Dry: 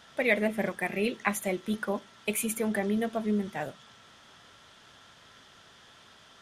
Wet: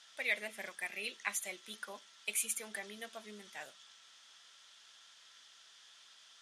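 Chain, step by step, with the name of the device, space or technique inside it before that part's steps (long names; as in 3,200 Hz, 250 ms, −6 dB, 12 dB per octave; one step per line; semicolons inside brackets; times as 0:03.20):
piezo pickup straight into a mixer (low-pass filter 6,900 Hz 12 dB per octave; first difference)
level +4 dB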